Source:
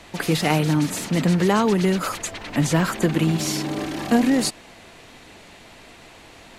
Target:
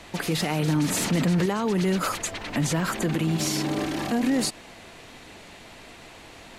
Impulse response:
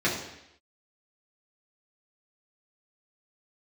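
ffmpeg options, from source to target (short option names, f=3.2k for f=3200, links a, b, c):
-filter_complex "[0:a]asettb=1/sr,asplit=3[a][b][c];[a]atrim=end=0.684[d];[b]atrim=start=0.68:end=1.46,asetpts=PTS-STARTPTS,afade=t=in:d=0.004:c=qsin,afade=t=out:st=0.776:d=0.004:c=qsin,acontrast=82[e];[c]atrim=start=1.456[f];[d][e]acrossfade=d=0.004:c1=hsin:c2=qsin[g];[g][f]acrossfade=d=0.004:c1=qsin:c2=hsin,alimiter=limit=-16dB:level=0:latency=1:release=78"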